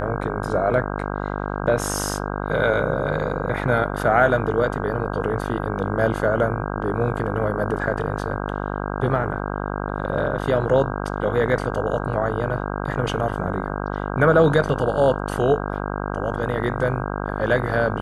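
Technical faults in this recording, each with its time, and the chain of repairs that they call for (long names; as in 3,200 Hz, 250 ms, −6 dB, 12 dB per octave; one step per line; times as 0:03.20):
mains buzz 50 Hz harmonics 32 −27 dBFS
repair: hum removal 50 Hz, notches 32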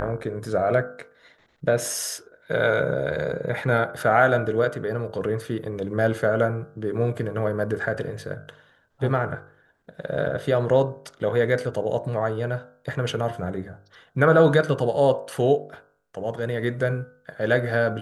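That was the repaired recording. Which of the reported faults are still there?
none of them is left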